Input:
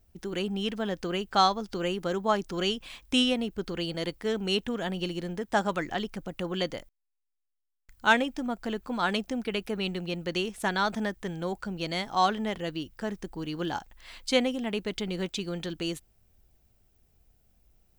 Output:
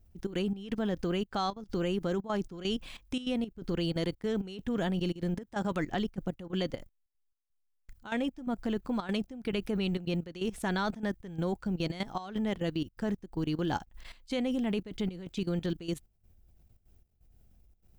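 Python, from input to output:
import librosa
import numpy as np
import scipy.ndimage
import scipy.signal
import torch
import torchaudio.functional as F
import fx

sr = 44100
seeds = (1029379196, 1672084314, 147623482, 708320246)

y = fx.low_shelf(x, sr, hz=350.0, db=9.5)
y = fx.level_steps(y, sr, step_db=15)
y = fx.step_gate(y, sr, bpm=170, pattern='xxx.xx..xxx', floor_db=-12.0, edge_ms=4.5)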